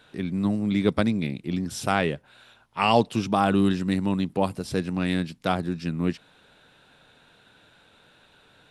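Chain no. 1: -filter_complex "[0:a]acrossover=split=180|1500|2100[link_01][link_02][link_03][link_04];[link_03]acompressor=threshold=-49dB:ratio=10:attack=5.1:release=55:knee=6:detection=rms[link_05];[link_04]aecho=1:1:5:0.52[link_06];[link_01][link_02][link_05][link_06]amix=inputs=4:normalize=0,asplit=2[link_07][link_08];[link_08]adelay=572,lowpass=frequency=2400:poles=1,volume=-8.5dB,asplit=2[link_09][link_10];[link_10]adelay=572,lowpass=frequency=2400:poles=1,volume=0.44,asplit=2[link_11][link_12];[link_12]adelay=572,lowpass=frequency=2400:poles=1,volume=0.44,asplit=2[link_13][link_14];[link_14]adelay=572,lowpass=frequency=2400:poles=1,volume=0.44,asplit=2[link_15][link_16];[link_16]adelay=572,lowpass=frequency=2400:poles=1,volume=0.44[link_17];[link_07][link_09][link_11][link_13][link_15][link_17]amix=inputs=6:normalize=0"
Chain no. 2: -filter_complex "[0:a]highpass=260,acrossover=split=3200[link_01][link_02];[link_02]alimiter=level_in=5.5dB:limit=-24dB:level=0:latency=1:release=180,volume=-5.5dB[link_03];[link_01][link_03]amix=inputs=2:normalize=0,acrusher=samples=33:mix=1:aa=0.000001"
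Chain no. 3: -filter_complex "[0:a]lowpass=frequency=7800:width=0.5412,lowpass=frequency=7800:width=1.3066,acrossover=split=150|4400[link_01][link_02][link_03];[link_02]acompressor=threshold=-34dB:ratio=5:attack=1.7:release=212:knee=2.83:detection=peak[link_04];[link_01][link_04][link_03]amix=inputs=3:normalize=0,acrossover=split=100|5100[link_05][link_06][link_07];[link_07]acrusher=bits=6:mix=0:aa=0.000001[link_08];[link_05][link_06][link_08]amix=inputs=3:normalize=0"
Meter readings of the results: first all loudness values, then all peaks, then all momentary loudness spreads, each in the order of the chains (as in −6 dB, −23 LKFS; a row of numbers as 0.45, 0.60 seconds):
−25.5, −28.0, −33.5 LKFS; −6.5, −7.5, −19.0 dBFS; 15, 11, 6 LU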